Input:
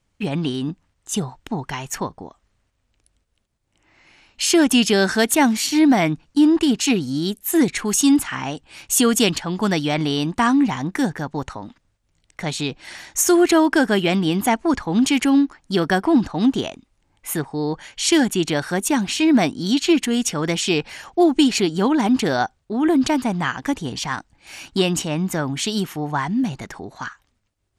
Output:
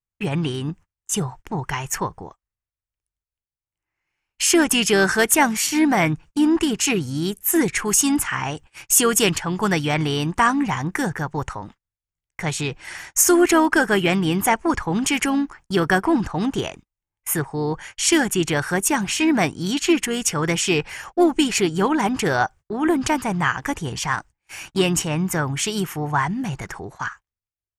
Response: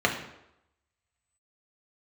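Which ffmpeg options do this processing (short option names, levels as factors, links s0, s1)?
-filter_complex "[0:a]asplit=2[s0][s1];[s1]asoftclip=type=tanh:threshold=0.251,volume=0.282[s2];[s0][s2]amix=inputs=2:normalize=0,agate=range=0.0398:threshold=0.0126:ratio=16:detection=peak,equalizer=f=250:t=o:w=0.67:g=-12,equalizer=f=630:t=o:w=0.67:g=-6,equalizer=f=4000:t=o:w=0.67:g=-11,asplit=2[s3][s4];[s4]asetrate=35002,aresample=44100,atempo=1.25992,volume=0.141[s5];[s3][s5]amix=inputs=2:normalize=0,volume=1.33"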